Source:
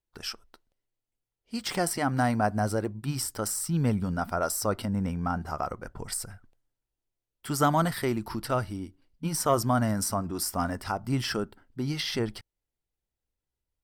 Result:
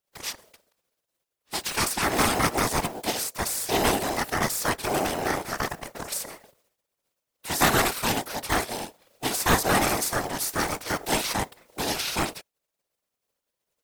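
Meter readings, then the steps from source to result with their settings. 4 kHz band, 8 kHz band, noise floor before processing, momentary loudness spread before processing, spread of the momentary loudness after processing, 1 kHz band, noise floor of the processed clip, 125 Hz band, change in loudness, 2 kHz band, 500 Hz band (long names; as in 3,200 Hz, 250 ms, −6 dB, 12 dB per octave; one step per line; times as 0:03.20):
+7.5 dB, +5.5 dB, below −85 dBFS, 12 LU, 12 LU, +4.0 dB, −85 dBFS, −4.5 dB, +3.5 dB, +9.0 dB, +2.0 dB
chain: compressing power law on the bin magnitudes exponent 0.48
ring modulation 540 Hz
random phases in short frames
level +5.5 dB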